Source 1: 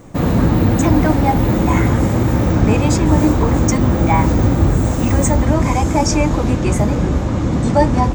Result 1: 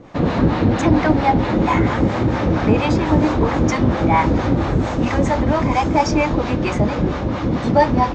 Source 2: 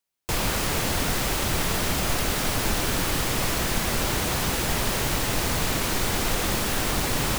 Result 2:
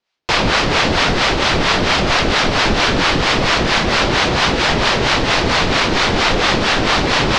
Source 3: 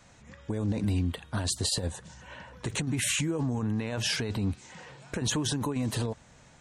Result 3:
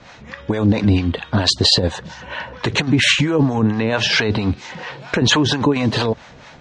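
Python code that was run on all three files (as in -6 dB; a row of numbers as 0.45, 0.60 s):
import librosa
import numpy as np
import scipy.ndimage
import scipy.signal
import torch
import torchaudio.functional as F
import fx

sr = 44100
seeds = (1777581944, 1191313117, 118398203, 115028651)

y = scipy.signal.sosfilt(scipy.signal.butter(4, 4900.0, 'lowpass', fs=sr, output='sos'), x)
y = fx.low_shelf(y, sr, hz=190.0, db=-9.0)
y = fx.harmonic_tremolo(y, sr, hz=4.4, depth_pct=70, crossover_hz=590.0)
y = librosa.util.normalize(y) * 10.0 ** (-1.5 / 20.0)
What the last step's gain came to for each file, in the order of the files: +4.5, +17.0, +20.5 dB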